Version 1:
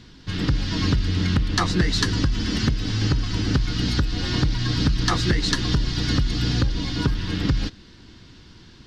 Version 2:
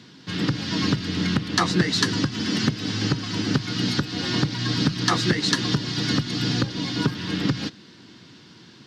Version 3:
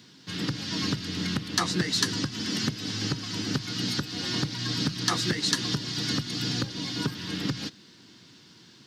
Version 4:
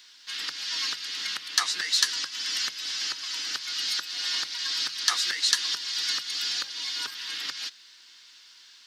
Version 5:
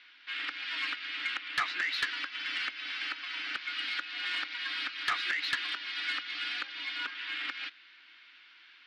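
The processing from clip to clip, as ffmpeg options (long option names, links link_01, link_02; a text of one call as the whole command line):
ffmpeg -i in.wav -af "highpass=frequency=130:width=0.5412,highpass=frequency=130:width=1.3066,volume=1.5dB" out.wav
ffmpeg -i in.wav -af "aemphasis=mode=production:type=50kf,volume=-7dB" out.wav
ffmpeg -i in.wav -af "highpass=1500,volume=3.5dB" out.wav
ffmpeg -i in.wav -af "highpass=frequency=250:width=0.5412,highpass=frequency=250:width=1.3066,equalizer=frequency=290:width_type=q:width=4:gain=4,equalizer=frequency=450:width_type=q:width=4:gain=-9,equalizer=frequency=980:width_type=q:width=4:gain=-4,equalizer=frequency=1400:width_type=q:width=4:gain=4,equalizer=frequency=2300:width_type=q:width=4:gain=7,lowpass=frequency=3000:width=0.5412,lowpass=frequency=3000:width=1.3066,asoftclip=type=tanh:threshold=-21dB" out.wav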